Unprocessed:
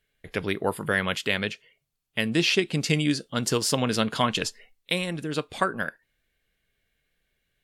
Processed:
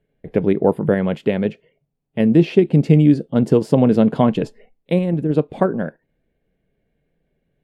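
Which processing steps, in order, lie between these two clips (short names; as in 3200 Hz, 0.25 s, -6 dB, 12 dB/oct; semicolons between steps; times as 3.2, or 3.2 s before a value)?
EQ curve 100 Hz 0 dB, 150 Hz +9 dB, 500 Hz +6 dB, 850 Hz +1 dB, 1200 Hz -10 dB, 2300 Hz -11 dB, 5900 Hz -23 dB, 8400 Hz -21 dB; in parallel at -2 dB: level quantiser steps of 11 dB; on the sum: gain +2 dB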